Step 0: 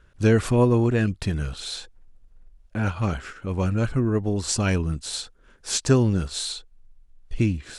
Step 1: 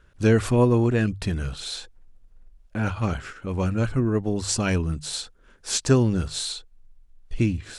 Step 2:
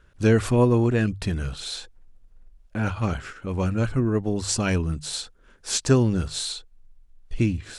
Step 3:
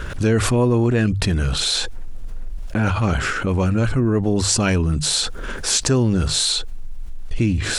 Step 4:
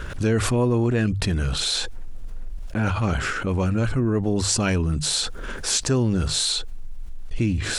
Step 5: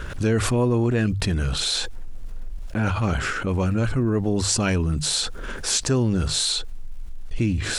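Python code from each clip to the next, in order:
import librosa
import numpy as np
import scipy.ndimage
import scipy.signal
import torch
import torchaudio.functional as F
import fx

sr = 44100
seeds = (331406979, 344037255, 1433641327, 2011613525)

y1 = fx.hum_notches(x, sr, base_hz=50, count=3)
y2 = y1
y3 = fx.env_flatten(y2, sr, amount_pct=70)
y3 = F.gain(torch.from_numpy(y3), -1.0).numpy()
y4 = fx.attack_slew(y3, sr, db_per_s=240.0)
y4 = F.gain(torch.from_numpy(y4), -3.5).numpy()
y5 = fx.dmg_crackle(y4, sr, seeds[0], per_s=110.0, level_db=-46.0)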